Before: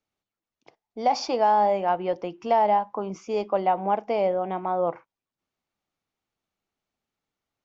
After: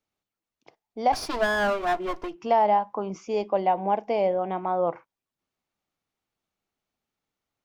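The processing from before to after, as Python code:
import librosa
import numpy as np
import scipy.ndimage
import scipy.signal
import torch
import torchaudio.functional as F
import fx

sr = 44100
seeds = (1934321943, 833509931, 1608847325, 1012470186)

y = fx.lower_of_two(x, sr, delay_ms=2.9, at=(1.12, 2.34), fade=0.02)
y = fx.peak_eq(y, sr, hz=1300.0, db=-10.0, octaves=0.24, at=(3.26, 4.39))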